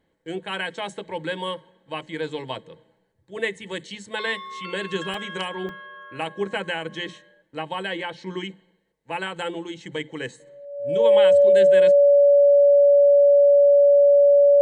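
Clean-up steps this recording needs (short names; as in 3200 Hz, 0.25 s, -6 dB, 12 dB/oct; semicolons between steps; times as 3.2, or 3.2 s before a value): notch 570 Hz, Q 30; interpolate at 2.97/5.14/5.69, 2.4 ms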